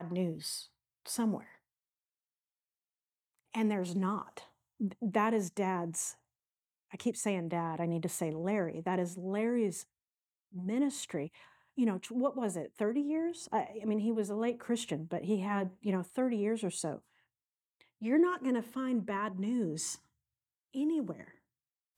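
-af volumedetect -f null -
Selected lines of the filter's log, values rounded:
mean_volume: -35.4 dB
max_volume: -14.8 dB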